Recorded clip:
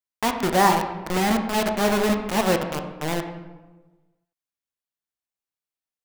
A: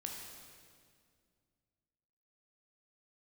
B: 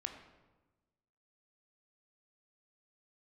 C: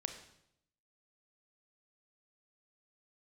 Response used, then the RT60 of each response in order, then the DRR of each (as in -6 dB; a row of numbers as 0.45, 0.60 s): B; 2.1, 1.2, 0.75 s; 0.0, 4.5, 6.0 dB